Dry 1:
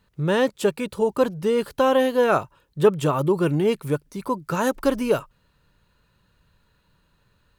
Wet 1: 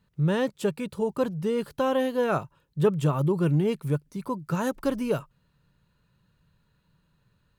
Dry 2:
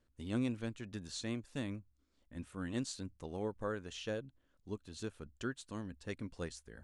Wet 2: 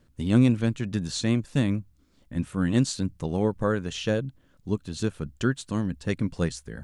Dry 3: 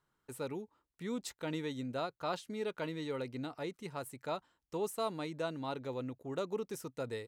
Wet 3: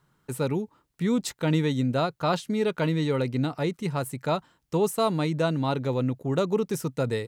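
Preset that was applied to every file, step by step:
parametric band 150 Hz +9 dB 1.1 octaves
loudness normalisation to −27 LKFS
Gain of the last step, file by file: −7.0, +12.0, +11.0 decibels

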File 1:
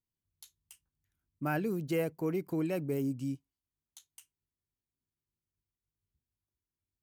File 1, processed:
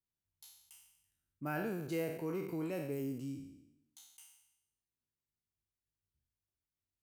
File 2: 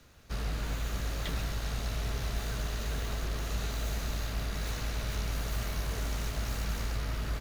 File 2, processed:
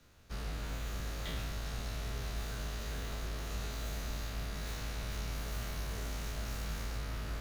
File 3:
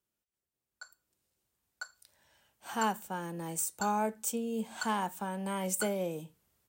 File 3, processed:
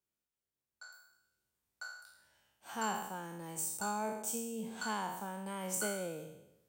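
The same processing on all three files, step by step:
peak hold with a decay on every bin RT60 0.87 s
level −7 dB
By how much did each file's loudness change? −5.5, −5.0, −4.5 LU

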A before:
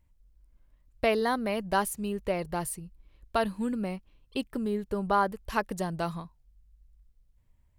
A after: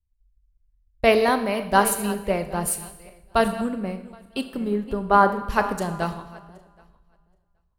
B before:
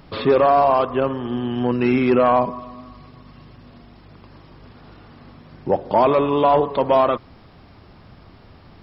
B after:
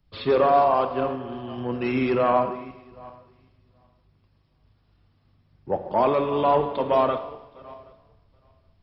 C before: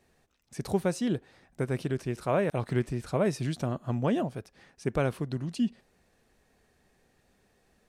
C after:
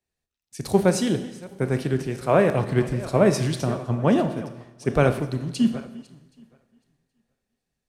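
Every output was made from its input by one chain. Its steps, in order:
feedback delay that plays each chunk backwards 387 ms, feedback 49%, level −12.5 dB
four-comb reverb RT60 1.4 s, combs from 27 ms, DRR 8.5 dB
multiband upward and downward expander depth 70%
loudness normalisation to −23 LKFS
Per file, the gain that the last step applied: +5.0, −6.5, +6.0 decibels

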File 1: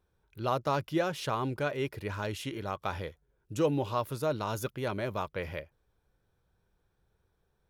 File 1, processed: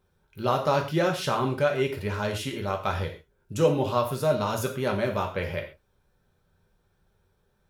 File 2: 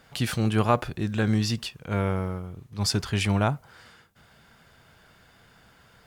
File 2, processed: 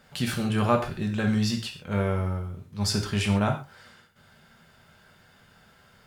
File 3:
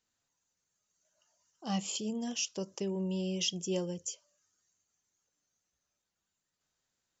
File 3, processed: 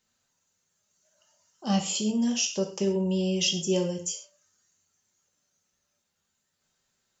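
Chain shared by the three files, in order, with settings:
reverb whose tail is shaped and stops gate 160 ms falling, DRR 2 dB
loudness normalisation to −27 LKFS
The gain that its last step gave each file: +4.0, −3.0, +5.5 decibels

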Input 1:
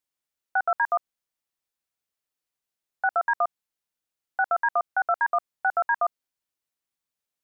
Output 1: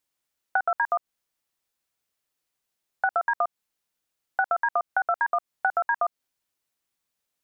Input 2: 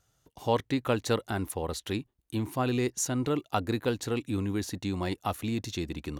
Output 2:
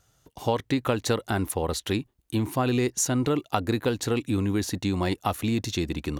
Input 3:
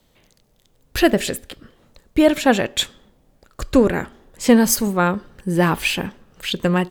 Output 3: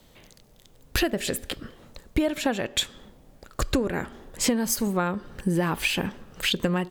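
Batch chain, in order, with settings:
downward compressor 10 to 1, threshold −26 dBFS
loudness normalisation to −27 LKFS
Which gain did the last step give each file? +5.5, +6.0, +4.5 decibels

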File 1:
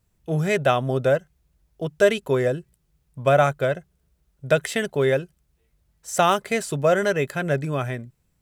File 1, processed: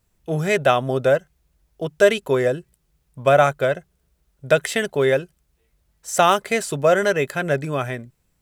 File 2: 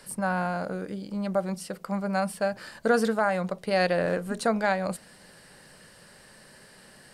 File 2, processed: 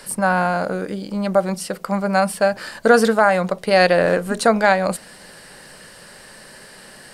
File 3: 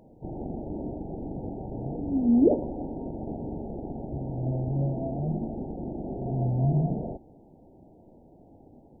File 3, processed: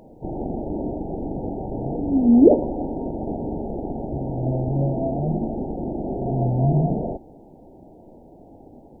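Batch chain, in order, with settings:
parametric band 110 Hz −5 dB 2.3 octaves
normalise the peak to −2 dBFS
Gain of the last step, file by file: +3.5, +10.5, +9.0 decibels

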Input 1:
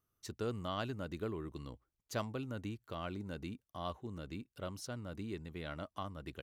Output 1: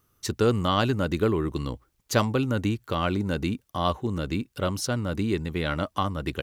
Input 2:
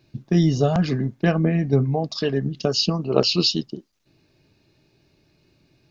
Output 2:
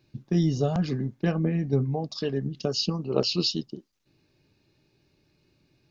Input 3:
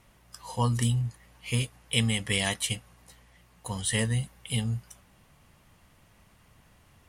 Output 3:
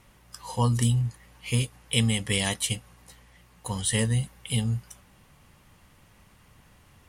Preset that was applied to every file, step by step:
notch filter 660 Hz, Q 12
dynamic equaliser 1,800 Hz, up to −4 dB, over −40 dBFS, Q 0.82
loudness normalisation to −27 LKFS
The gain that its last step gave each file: +16.5, −5.5, +3.0 decibels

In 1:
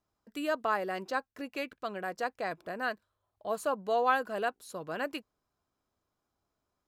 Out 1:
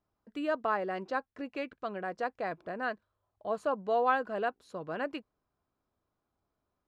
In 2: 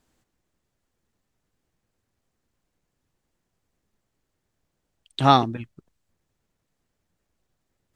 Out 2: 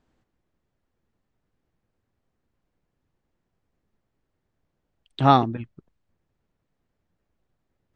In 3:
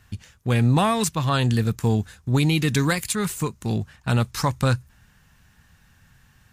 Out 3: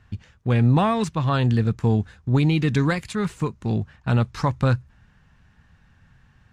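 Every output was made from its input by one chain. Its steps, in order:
head-to-tape spacing loss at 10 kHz 20 dB
level +1.5 dB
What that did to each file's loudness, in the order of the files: 0.0, 0.0, +0.5 LU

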